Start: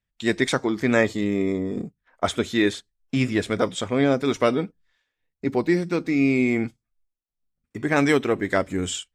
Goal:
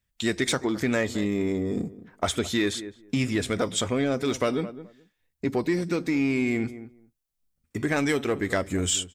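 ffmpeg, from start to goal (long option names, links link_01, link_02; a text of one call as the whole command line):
ffmpeg -i in.wav -filter_complex "[0:a]asplit=2[link_01][link_02];[link_02]adelay=212,lowpass=frequency=1100:poles=1,volume=-19dB,asplit=2[link_03][link_04];[link_04]adelay=212,lowpass=frequency=1100:poles=1,volume=0.15[link_05];[link_01][link_03][link_05]amix=inputs=3:normalize=0,asplit=2[link_06][link_07];[link_07]asoftclip=type=tanh:threshold=-20.5dB,volume=-3.5dB[link_08];[link_06][link_08]amix=inputs=2:normalize=0,equalizer=frequency=77:width_type=o:width=0.62:gain=6.5,acompressor=threshold=-22dB:ratio=2.5,highshelf=frequency=5100:gain=8,volume=-2dB" out.wav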